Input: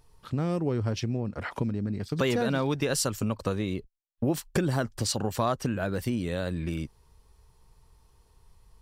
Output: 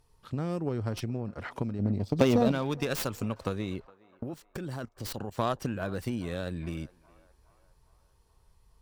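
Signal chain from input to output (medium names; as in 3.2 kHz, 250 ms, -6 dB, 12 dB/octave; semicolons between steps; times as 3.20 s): tracing distortion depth 0.17 ms; 1.79–2.52 s: fifteen-band graphic EQ 100 Hz +7 dB, 250 Hz +7 dB, 630 Hz +8 dB, 1.6 kHz -10 dB, 10 kHz -5 dB; 4.23–5.38 s: level held to a coarse grid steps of 16 dB; Chebyshev shaper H 3 -15 dB, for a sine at -10.5 dBFS; on a send: band-passed feedback delay 413 ms, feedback 58%, band-pass 1 kHz, level -20 dB; on the sum: trim +2 dB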